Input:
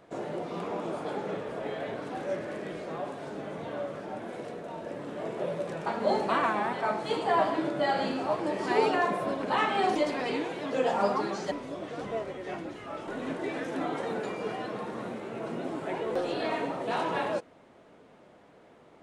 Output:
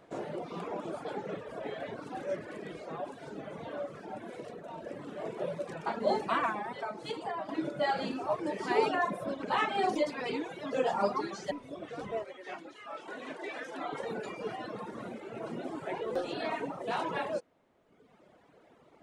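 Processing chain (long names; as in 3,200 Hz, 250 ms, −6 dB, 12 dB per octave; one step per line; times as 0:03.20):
reverb reduction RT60 1.4 s
0:06.53–0:07.49: downward compressor 12 to 1, threshold −32 dBFS, peak gain reduction 11.5 dB
0:12.24–0:13.93: meter weighting curve A
level −1.5 dB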